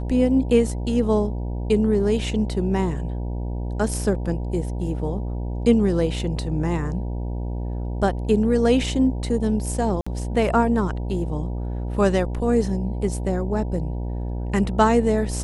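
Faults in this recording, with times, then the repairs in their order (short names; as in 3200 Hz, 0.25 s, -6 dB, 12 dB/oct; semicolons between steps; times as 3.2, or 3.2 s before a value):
buzz 60 Hz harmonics 16 -27 dBFS
10.01–10.06 gap 55 ms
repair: de-hum 60 Hz, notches 16; interpolate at 10.01, 55 ms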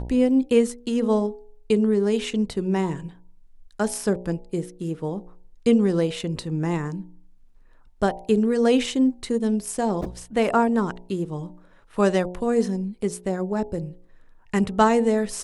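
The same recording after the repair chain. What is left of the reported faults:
none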